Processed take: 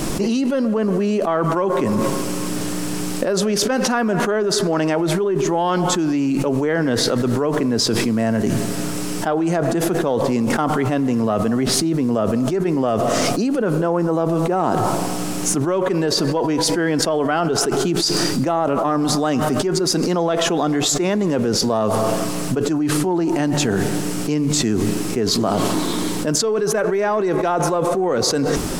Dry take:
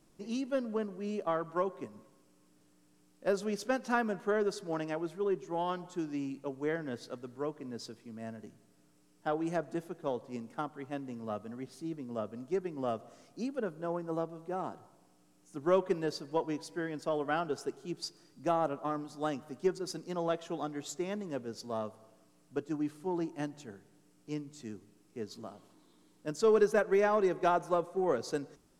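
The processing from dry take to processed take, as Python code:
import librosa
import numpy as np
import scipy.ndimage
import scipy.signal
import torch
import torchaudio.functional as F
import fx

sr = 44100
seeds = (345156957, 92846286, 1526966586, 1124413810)

y = fx.env_flatten(x, sr, amount_pct=100)
y = F.gain(torch.from_numpy(y), 3.0).numpy()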